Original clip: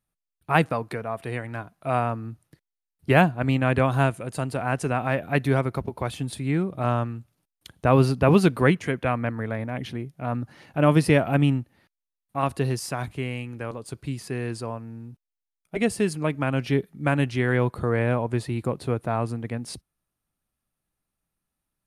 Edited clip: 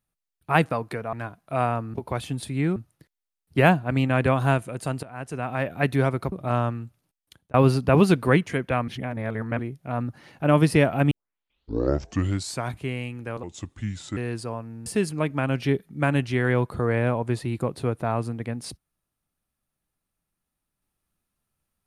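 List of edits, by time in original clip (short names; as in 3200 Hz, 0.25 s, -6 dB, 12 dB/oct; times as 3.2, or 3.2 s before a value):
1.13–1.47 cut
4.55–5.3 fade in, from -18.5 dB
5.84–6.66 move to 2.28
7.18–7.88 fade out equal-power
9.22–9.93 reverse
11.45 tape start 1.59 s
13.77–14.34 speed 77%
15.03–15.9 cut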